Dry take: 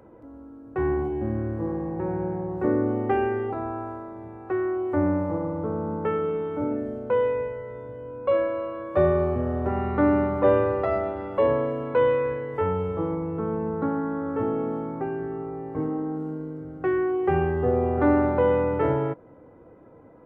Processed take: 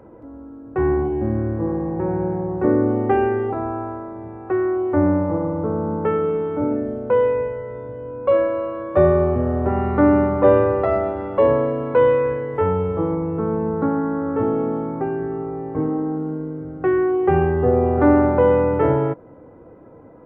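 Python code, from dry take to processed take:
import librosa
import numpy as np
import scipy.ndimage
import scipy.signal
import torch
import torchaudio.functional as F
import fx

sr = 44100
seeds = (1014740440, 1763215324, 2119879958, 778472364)

y = fx.high_shelf(x, sr, hz=2700.0, db=-8.5)
y = y * 10.0 ** (6.0 / 20.0)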